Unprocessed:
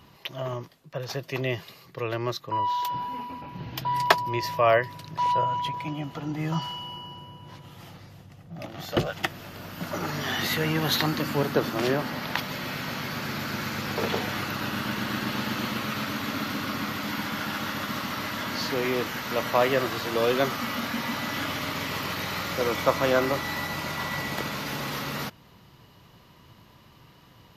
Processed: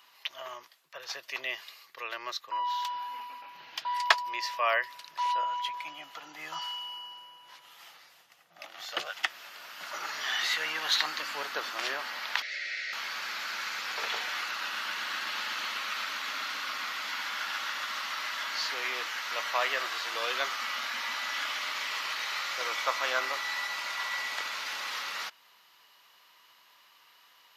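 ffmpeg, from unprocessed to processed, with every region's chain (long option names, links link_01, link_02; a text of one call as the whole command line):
ffmpeg -i in.wav -filter_complex "[0:a]asettb=1/sr,asplit=3[link_01][link_02][link_03];[link_01]atrim=end=12.424[link_04];[link_02]atrim=start=12.42:end=12.93,asetpts=PTS-STARTPTS,afade=type=in:duration=0.004:curve=qsin,afade=type=out:start_time=0.506:duration=0.004:curve=qsin,asoftclip=type=hard:threshold=-27.5dB,asuperstop=centerf=1000:order=4:qfactor=0.88,highpass=frequency=360:width=0.5412,highpass=frequency=360:width=1.3066,equalizer=frequency=450:width_type=q:width=4:gain=-4,equalizer=frequency=2000:width_type=q:width=4:gain=9,equalizer=frequency=3100:width_type=q:width=4:gain=-6,lowpass=frequency=5700:width=0.5412,lowpass=frequency=5700:width=1.3066[link_05];[link_03]atrim=start=12.926[link_06];[link_04][link_05]acrossfade=duration=0.004:curve1=hsin:curve2=qsin[link_07];[link_07][link_06]acrossfade=duration=0.004:curve1=qsin:curve2=hsin,highpass=1200,acrossover=split=8600[link_08][link_09];[link_09]acompressor=threshold=-59dB:ratio=4:attack=1:release=60[link_10];[link_08][link_10]amix=inputs=2:normalize=0" out.wav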